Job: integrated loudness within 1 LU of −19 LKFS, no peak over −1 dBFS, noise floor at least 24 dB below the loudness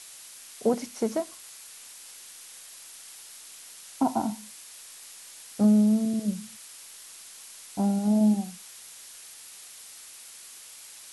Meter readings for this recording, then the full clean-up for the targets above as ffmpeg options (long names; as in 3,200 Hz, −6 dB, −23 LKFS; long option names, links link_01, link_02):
background noise floor −47 dBFS; target noise floor −50 dBFS; integrated loudness −26.0 LKFS; sample peak −13.0 dBFS; target loudness −19.0 LKFS
→ -af "afftdn=noise_reduction=6:noise_floor=-47"
-af "volume=7dB"